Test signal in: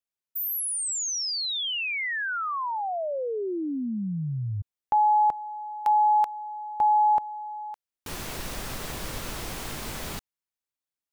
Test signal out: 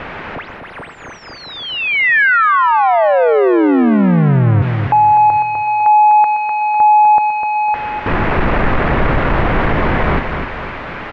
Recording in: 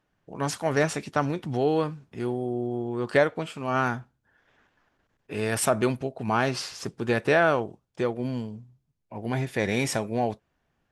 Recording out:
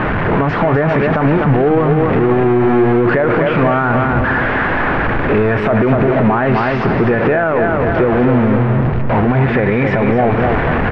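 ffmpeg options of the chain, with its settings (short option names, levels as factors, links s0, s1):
-filter_complex "[0:a]aeval=exprs='val(0)+0.5*0.0794*sgn(val(0))':c=same,lowpass=f=2100:w=0.5412,lowpass=f=2100:w=1.3066,asplit=2[s0][s1];[s1]aecho=0:1:251|502|753|1004|1255:0.447|0.197|0.0865|0.0381|0.0167[s2];[s0][s2]amix=inputs=2:normalize=0,alimiter=level_in=7.5:limit=0.891:release=50:level=0:latency=1,volume=0.596"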